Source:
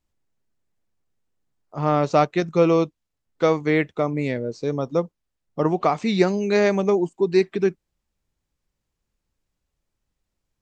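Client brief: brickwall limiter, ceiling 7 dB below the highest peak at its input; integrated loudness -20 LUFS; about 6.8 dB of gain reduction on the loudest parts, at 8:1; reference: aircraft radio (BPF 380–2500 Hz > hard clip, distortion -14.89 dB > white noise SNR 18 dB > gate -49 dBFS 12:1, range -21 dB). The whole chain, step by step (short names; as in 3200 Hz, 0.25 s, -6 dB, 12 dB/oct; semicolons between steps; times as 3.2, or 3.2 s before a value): compressor 8:1, threshold -19 dBFS; limiter -17 dBFS; BPF 380–2500 Hz; hard clip -25 dBFS; white noise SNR 18 dB; gate -49 dBFS 12:1, range -21 dB; gain +12.5 dB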